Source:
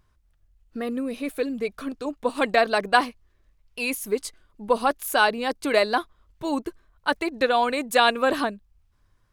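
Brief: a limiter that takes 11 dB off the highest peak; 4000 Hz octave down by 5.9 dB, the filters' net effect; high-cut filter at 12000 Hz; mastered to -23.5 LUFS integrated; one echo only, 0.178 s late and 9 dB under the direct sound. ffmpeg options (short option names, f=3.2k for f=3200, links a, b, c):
-af "lowpass=12k,equalizer=f=4k:t=o:g=-7.5,alimiter=limit=-17dB:level=0:latency=1,aecho=1:1:178:0.355,volume=5.5dB"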